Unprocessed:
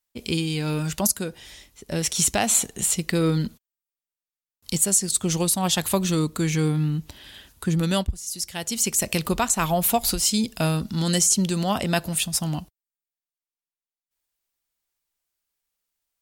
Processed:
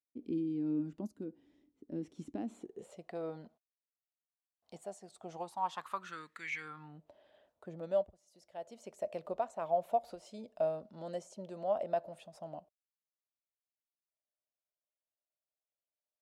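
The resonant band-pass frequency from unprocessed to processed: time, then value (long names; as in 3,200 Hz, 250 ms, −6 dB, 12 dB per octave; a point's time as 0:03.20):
resonant band-pass, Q 7.3
0:02.55 290 Hz
0:03.05 690 Hz
0:05.31 690 Hz
0:06.54 2,200 Hz
0:06.98 610 Hz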